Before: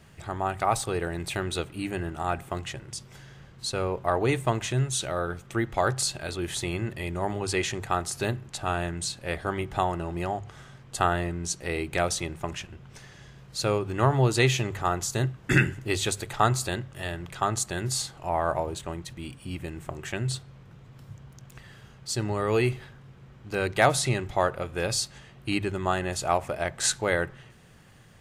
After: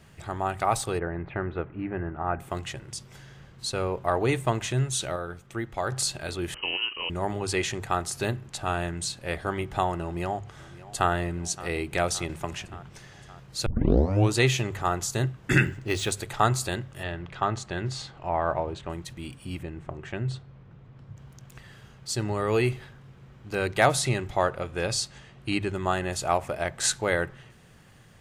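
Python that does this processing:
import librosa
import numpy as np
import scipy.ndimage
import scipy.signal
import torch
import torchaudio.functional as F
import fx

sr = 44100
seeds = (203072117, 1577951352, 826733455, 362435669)

y = fx.lowpass(x, sr, hz=1900.0, slope=24, at=(0.98, 2.39), fade=0.02)
y = fx.freq_invert(y, sr, carrier_hz=3000, at=(6.54, 7.1))
y = fx.echo_throw(y, sr, start_s=10.02, length_s=1.09, ms=570, feedback_pct=70, wet_db=-17.5)
y = fx.band_squash(y, sr, depth_pct=40, at=(12.29, 12.89))
y = fx.resample_linear(y, sr, factor=3, at=(15.65, 16.12))
y = fx.lowpass(y, sr, hz=3700.0, slope=12, at=(17.03, 18.9))
y = fx.spacing_loss(y, sr, db_at_10k=21, at=(19.63, 21.17))
y = fx.lowpass(y, sr, hz=9800.0, slope=12, at=(24.37, 25.73))
y = fx.edit(y, sr, fx.clip_gain(start_s=5.16, length_s=0.76, db=-5.0),
    fx.tape_start(start_s=13.66, length_s=0.67), tone=tone)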